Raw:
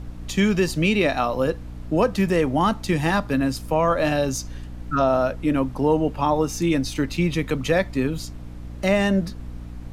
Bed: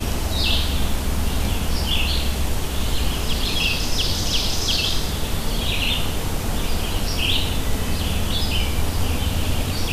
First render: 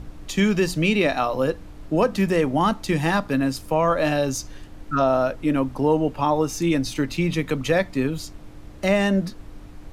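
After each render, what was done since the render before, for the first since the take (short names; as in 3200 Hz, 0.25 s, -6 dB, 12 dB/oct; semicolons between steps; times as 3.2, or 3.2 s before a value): de-hum 60 Hz, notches 4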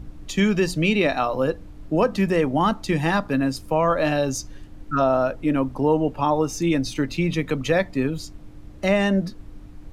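denoiser 6 dB, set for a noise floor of -41 dBFS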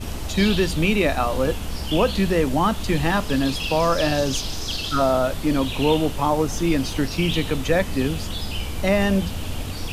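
add bed -7 dB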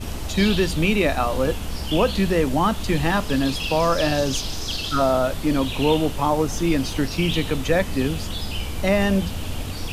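nothing audible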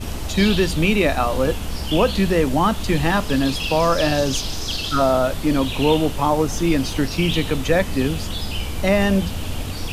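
gain +2 dB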